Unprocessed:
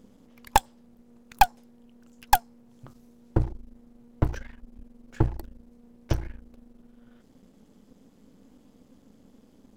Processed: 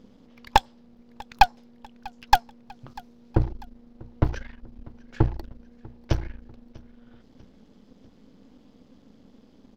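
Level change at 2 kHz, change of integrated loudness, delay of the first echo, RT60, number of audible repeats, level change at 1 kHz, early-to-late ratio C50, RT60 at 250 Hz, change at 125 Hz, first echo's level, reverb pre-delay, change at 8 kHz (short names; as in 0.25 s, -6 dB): +2.5 dB, +2.0 dB, 0.644 s, none, 2, +2.0 dB, none, none, +2.0 dB, -23.5 dB, none, -6.0 dB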